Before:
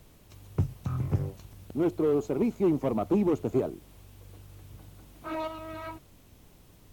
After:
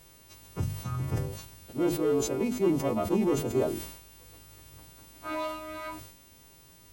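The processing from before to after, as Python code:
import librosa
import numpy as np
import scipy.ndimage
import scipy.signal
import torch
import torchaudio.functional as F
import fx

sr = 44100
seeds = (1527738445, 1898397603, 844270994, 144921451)

y = fx.freq_snap(x, sr, grid_st=2)
y = fx.high_shelf(y, sr, hz=7800.0, db=-7.0)
y = fx.hum_notches(y, sr, base_hz=50, count=5)
y = fx.sustainer(y, sr, db_per_s=69.0)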